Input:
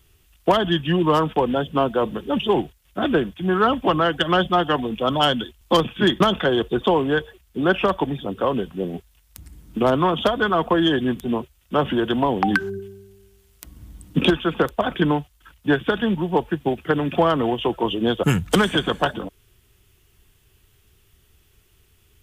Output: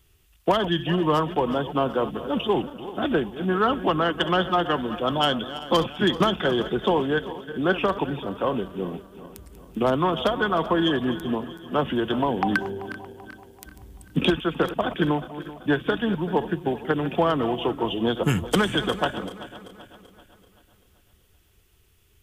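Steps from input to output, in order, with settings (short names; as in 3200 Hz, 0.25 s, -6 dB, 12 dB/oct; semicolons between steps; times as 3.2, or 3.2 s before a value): regenerating reverse delay 0.193 s, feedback 67%, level -13.5 dB; gain -3.5 dB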